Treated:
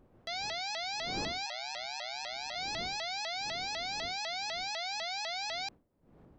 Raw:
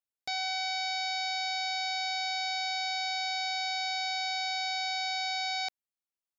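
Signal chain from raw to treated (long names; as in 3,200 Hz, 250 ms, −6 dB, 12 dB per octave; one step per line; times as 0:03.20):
wind on the microphone 380 Hz −48 dBFS
0:01.46–0:02.56: ring modulation 65 Hz
pitch modulation by a square or saw wave saw up 4 Hz, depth 250 cents
level −4.5 dB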